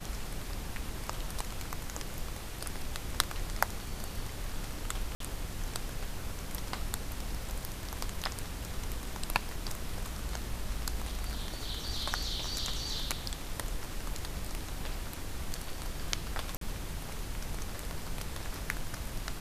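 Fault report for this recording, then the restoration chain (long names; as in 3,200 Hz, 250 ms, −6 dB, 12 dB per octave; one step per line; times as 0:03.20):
0:05.15–0:05.20: drop-out 53 ms
0:16.57–0:16.61: drop-out 43 ms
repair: repair the gap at 0:05.15, 53 ms
repair the gap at 0:16.57, 43 ms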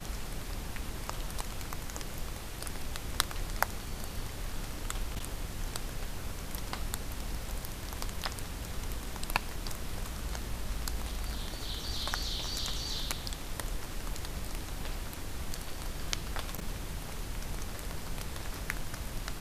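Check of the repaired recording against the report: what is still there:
none of them is left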